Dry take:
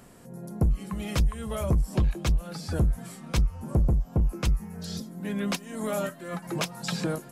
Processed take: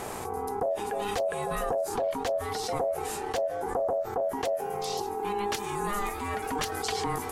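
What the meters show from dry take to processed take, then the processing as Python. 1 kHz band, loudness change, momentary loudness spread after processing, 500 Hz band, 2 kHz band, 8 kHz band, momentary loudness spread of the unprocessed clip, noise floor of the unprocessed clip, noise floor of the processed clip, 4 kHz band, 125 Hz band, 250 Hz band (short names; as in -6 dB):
+10.0 dB, -1.5 dB, 3 LU, +7.0 dB, +1.5 dB, +1.5 dB, 10 LU, -48 dBFS, -36 dBFS, 0.0 dB, -15.5 dB, -7.5 dB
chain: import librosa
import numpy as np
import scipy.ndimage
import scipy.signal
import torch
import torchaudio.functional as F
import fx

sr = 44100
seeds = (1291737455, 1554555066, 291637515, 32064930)

y = x * np.sin(2.0 * np.pi * 610.0 * np.arange(len(x)) / sr)
y = fx.env_flatten(y, sr, amount_pct=70)
y = F.gain(torch.from_numpy(y), -5.0).numpy()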